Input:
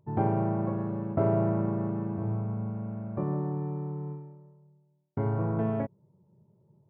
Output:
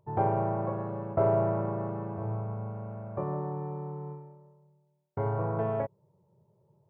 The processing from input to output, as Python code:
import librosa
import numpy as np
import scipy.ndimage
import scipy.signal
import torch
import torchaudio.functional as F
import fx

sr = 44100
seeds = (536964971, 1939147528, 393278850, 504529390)

y = fx.graphic_eq(x, sr, hz=(250, 500, 1000), db=(-11, 6, 4))
y = F.gain(torch.from_numpy(y), -1.0).numpy()